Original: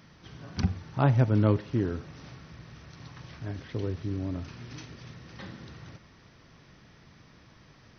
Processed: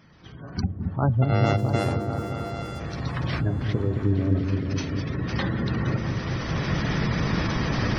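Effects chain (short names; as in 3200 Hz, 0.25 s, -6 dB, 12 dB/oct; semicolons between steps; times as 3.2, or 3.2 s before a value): 1.22–2.8 sample sorter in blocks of 64 samples; recorder AGC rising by 12 dB/s; spectral gate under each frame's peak -25 dB strong; on a send: repeats that get brighter 0.22 s, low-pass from 400 Hz, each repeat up 1 oct, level -3 dB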